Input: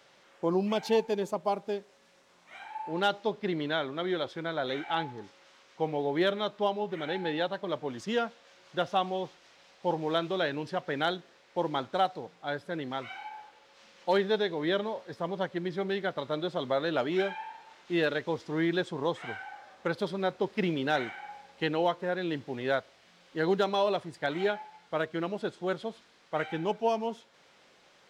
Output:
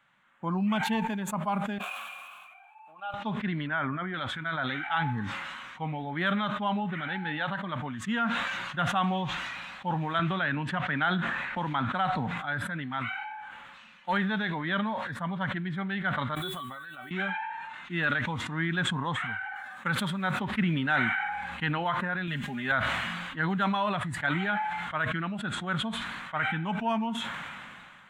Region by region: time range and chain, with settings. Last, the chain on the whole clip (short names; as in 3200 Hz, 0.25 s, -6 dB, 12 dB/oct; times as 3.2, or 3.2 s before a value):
1.78–3.14 switching spikes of -33 dBFS + vowel filter a
3.67–4.14 Butterworth band-stop 4500 Hz, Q 1.2 + high shelf 2800 Hz -8.5 dB
10.19–12.38 high shelf 6100 Hz -8 dB + three-band squash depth 70%
16.35–17.11 resonator 380 Hz, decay 0.27 s, mix 90% + requantised 10-bit, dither none
19.55–20.4 HPF 110 Hz + high shelf 5200 Hz +9 dB
22.27–22.72 high shelf 4500 Hz +9.5 dB + comb 4.9 ms, depth 75%
whole clip: spectral noise reduction 8 dB; EQ curve 230 Hz 0 dB, 420 Hz -21 dB, 1000 Hz -1 dB, 1500 Hz +2 dB, 3500 Hz -7 dB, 5100 Hz -26 dB, 7400 Hz -10 dB; sustainer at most 25 dB/s; gain +4.5 dB